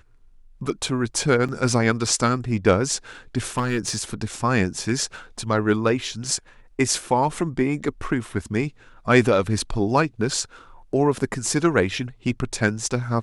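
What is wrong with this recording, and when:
1.48–1.49 s: dropout 6.1 ms
3.57–3.98 s: clipped -17.5 dBFS

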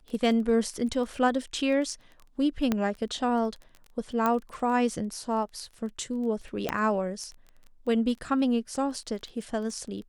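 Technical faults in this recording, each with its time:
crackle 16 per s -36 dBFS
2.72 s: pop -12 dBFS
4.26 s: pop -13 dBFS
6.69 s: pop -12 dBFS

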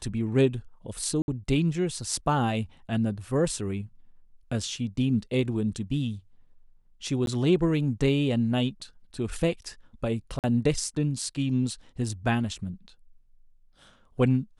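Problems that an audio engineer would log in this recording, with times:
1.22–1.28 s: dropout 61 ms
7.26–7.27 s: dropout 12 ms
10.39–10.44 s: dropout 48 ms

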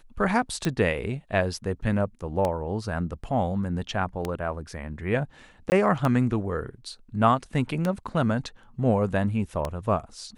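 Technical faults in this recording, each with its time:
tick 33 1/3 rpm -13 dBFS
5.70–5.72 s: dropout 19 ms

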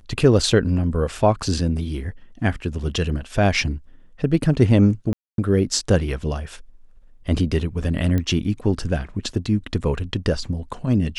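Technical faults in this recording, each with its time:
5.13–5.38 s: dropout 252 ms
8.18 s: pop -12 dBFS

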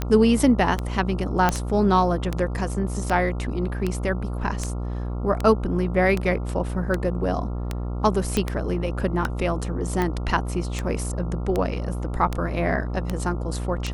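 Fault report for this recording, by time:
buzz 60 Hz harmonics 23 -28 dBFS
tick 78 rpm -11 dBFS
1.49 s: pop -6 dBFS
8.37 s: pop -8 dBFS

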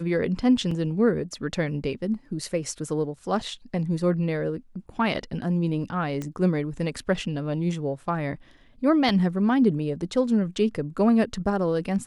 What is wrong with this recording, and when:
0.71 s: dropout 3.8 ms
6.22 s: pop -19 dBFS
9.09 s: dropout 2.5 ms

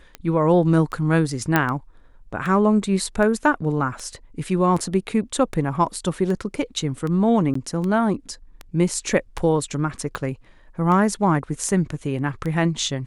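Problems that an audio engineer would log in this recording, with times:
tick 78 rpm -17 dBFS
1.56 s: pop -4 dBFS
7.54–7.55 s: dropout 14 ms

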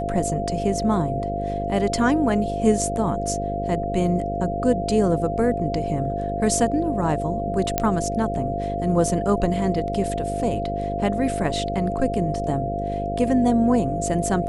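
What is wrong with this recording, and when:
buzz 50 Hz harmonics 11 -29 dBFS
whine 690 Hz -26 dBFS
7.78 s: pop -5 dBFS

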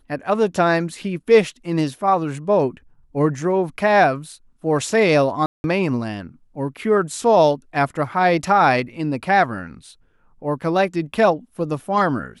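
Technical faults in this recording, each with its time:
5.46–5.64 s: dropout 181 ms

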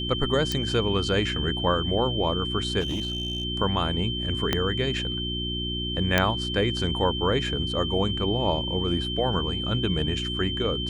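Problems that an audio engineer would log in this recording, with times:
hum 60 Hz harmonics 6 -32 dBFS
whine 3.1 kHz -30 dBFS
0.52 s: pop
2.80–3.45 s: clipped -24.5 dBFS
4.53 s: pop -8 dBFS
6.18 s: pop -5 dBFS

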